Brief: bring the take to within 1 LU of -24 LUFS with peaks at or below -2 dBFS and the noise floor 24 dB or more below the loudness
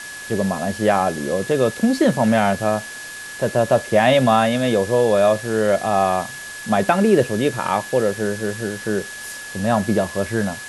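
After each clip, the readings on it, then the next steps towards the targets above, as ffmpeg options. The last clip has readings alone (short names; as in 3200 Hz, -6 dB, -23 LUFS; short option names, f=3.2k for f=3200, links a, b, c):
steady tone 1700 Hz; tone level -33 dBFS; noise floor -34 dBFS; noise floor target -43 dBFS; loudness -19.0 LUFS; peak -2.5 dBFS; loudness target -24.0 LUFS
-> -af "bandreject=f=1.7k:w=30"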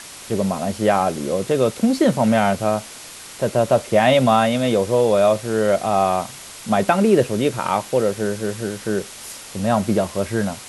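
steady tone none; noise floor -38 dBFS; noise floor target -44 dBFS
-> -af "afftdn=nr=6:nf=-38"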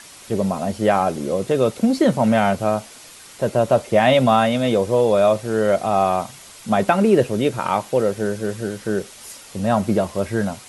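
noise floor -43 dBFS; noise floor target -44 dBFS
-> -af "afftdn=nr=6:nf=-43"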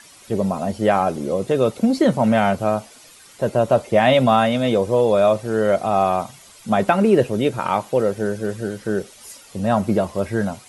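noise floor -46 dBFS; loudness -19.5 LUFS; peak -2.5 dBFS; loudness target -24.0 LUFS
-> -af "volume=-4.5dB"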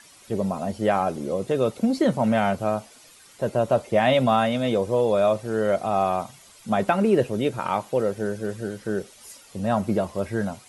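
loudness -24.0 LUFS; peak -7.0 dBFS; noise floor -51 dBFS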